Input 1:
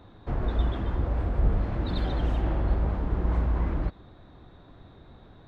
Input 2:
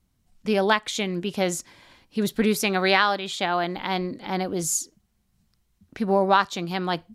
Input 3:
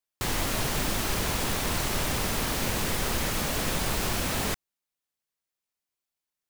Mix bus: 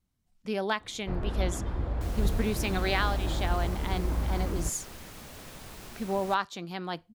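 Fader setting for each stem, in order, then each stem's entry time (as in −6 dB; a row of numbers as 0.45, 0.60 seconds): −4.0, −9.0, −17.5 decibels; 0.80, 0.00, 1.80 seconds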